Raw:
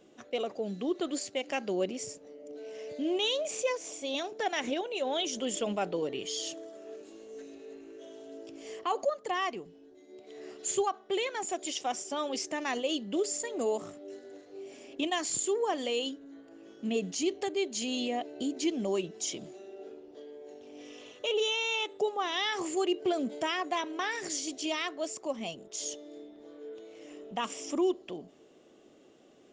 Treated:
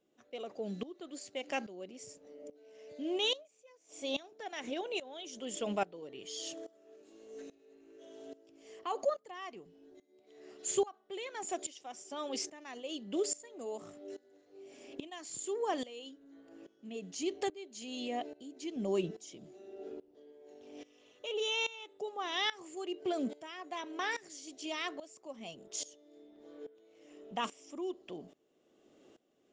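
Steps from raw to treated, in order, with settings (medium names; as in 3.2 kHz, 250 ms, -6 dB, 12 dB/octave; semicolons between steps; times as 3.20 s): 3.36–4.00 s: dip -19 dB, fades 0.12 s; 18.76–20.32 s: bass shelf 400 Hz +7 dB; sawtooth tremolo in dB swelling 1.2 Hz, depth 19 dB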